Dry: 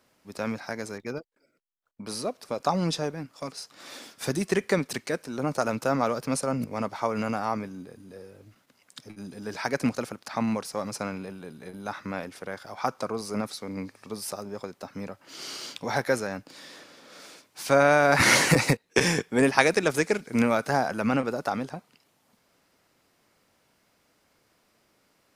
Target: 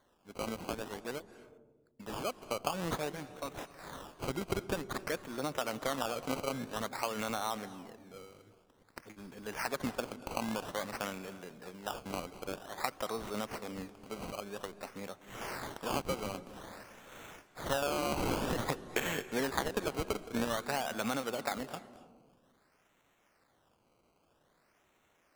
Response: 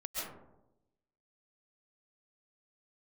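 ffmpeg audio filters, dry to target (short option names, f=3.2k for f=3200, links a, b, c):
-filter_complex "[0:a]lowpass=f=7.3k:w=0.5412,lowpass=f=7.3k:w=1.3066,lowshelf=f=360:g=-10.5,acompressor=threshold=-28dB:ratio=6,acrusher=samples=17:mix=1:aa=0.000001:lfo=1:lforange=17:lforate=0.51,asplit=2[a][b];[1:a]atrim=start_sample=2205,asetrate=25137,aresample=44100[c];[b][c]afir=irnorm=-1:irlink=0,volume=-20dB[d];[a][d]amix=inputs=2:normalize=0,volume=-2.5dB"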